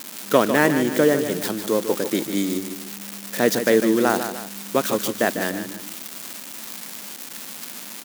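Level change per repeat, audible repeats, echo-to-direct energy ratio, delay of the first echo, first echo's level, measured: −7.0 dB, 2, −8.0 dB, 150 ms, −9.0 dB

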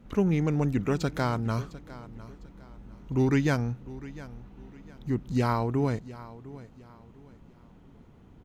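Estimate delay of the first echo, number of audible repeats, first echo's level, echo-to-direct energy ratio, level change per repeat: 704 ms, 2, −17.5 dB, −17.0 dB, −9.5 dB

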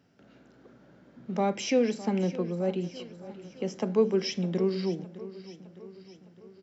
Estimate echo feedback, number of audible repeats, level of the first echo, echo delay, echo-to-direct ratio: 55%, 4, −16.0 dB, 610 ms, −14.5 dB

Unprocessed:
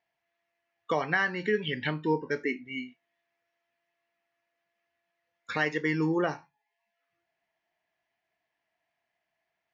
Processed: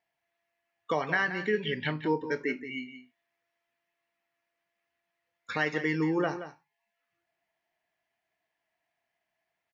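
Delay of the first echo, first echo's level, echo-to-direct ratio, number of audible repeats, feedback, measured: 175 ms, −11.5 dB, −11.5 dB, 1, repeats not evenly spaced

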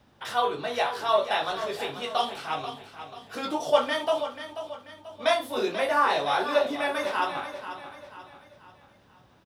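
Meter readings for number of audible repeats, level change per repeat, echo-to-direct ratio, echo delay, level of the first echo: 4, −7.5 dB, −10.0 dB, 487 ms, −11.0 dB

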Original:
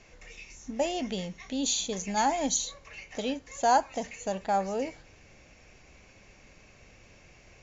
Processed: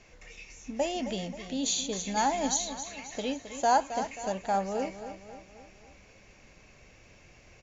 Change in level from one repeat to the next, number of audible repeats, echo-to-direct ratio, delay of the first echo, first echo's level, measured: −6.0 dB, 4, −9.5 dB, 267 ms, −11.0 dB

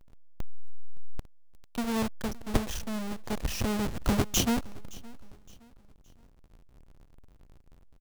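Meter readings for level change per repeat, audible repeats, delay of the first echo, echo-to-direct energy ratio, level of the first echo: −9.0 dB, 2, 567 ms, −21.5 dB, −22.0 dB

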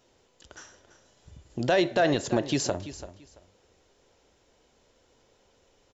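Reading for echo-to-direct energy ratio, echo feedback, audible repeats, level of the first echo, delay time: −14.0 dB, 21%, 2, −14.0 dB, 337 ms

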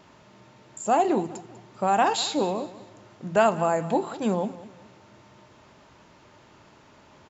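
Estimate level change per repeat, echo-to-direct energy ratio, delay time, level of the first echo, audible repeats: −9.0 dB, −16.5 dB, 196 ms, −17.0 dB, 2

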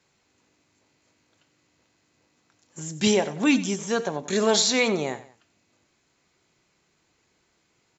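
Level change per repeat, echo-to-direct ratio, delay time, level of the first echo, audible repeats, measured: −8.5 dB, −15.0 dB, 93 ms, −15.5 dB, 2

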